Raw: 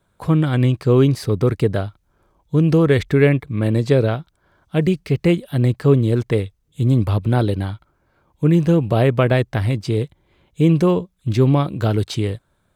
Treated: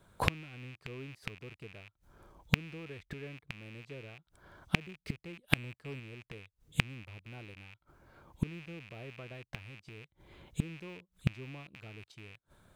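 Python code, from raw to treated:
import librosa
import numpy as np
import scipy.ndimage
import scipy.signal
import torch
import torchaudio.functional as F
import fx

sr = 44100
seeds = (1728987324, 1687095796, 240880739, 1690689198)

y = fx.rattle_buzz(x, sr, strikes_db=-25.0, level_db=-8.0)
y = fx.leveller(y, sr, passes=1, at=(5.44, 6.0))
y = fx.gate_flip(y, sr, shuts_db=-17.0, range_db=-34)
y = y * 10.0 ** (2.0 / 20.0)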